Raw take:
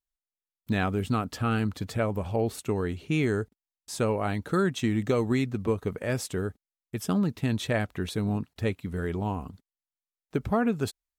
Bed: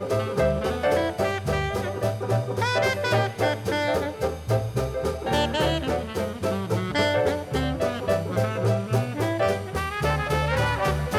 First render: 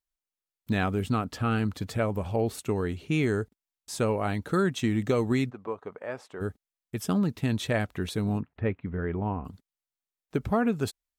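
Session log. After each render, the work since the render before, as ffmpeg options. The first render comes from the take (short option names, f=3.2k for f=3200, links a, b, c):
-filter_complex "[0:a]asettb=1/sr,asplit=3[a][b][c];[a]atrim=end=1.094[d];[b]atrim=start=1.09:end=1.64,asetpts=PTS-STARTPTS,afade=t=in:d=0.004:c=qsin,afade=t=out:st=0.546:d=0.004:c=qsin,highshelf=f=6.2k:g=-4.5[e];[c]atrim=start=1.636[f];[d][e]acrossfade=d=0.004:c1=hsin:c2=qsin[g];[g][f]acrossfade=d=0.004:c1=qsin:c2=hsin,asplit=3[h][i][j];[h]afade=t=out:st=5.49:d=0.02[k];[i]bandpass=f=910:t=q:w=1.2,afade=t=in:st=5.49:d=0.02,afade=t=out:st=6.4:d=0.02[l];[j]afade=t=in:st=6.4:d=0.02[m];[k][l][m]amix=inputs=3:normalize=0,asettb=1/sr,asplit=3[n][o][p];[n]atrim=end=8.404[q];[o]atrim=start=8.4:end=9.45,asetpts=PTS-STARTPTS,afade=t=in:d=0.004:c=qsin,afade=t=out:st=1.046:d=0.004:c=qsin,lowpass=f=2.3k:w=0.5412,lowpass=f=2.3k:w=1.3066[r];[p]atrim=start=9.446[s];[q][r]acrossfade=d=0.004:c1=hsin:c2=qsin[t];[t][s]acrossfade=d=0.004:c1=qsin:c2=hsin"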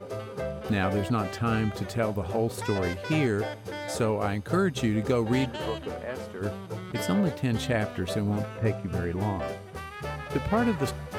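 -filter_complex "[1:a]volume=-11dB[a];[0:a][a]amix=inputs=2:normalize=0"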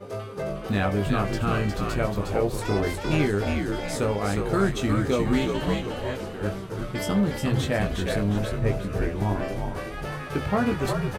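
-filter_complex "[0:a]asplit=2[a][b];[b]adelay=20,volume=-5.5dB[c];[a][c]amix=inputs=2:normalize=0,asplit=2[d][e];[e]asplit=5[f][g][h][i][j];[f]adelay=359,afreqshift=-69,volume=-4dB[k];[g]adelay=718,afreqshift=-138,volume=-12.4dB[l];[h]adelay=1077,afreqshift=-207,volume=-20.8dB[m];[i]adelay=1436,afreqshift=-276,volume=-29.2dB[n];[j]adelay=1795,afreqshift=-345,volume=-37.6dB[o];[k][l][m][n][o]amix=inputs=5:normalize=0[p];[d][p]amix=inputs=2:normalize=0"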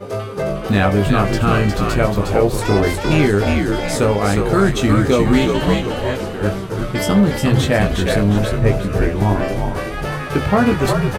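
-af "volume=9.5dB,alimiter=limit=-3dB:level=0:latency=1"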